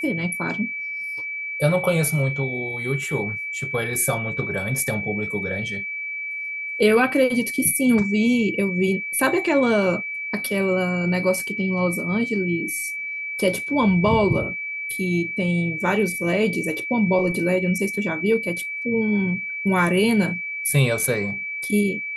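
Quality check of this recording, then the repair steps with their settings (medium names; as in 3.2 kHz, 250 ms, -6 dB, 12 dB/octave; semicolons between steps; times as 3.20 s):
whine 2.3 kHz -27 dBFS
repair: band-stop 2.3 kHz, Q 30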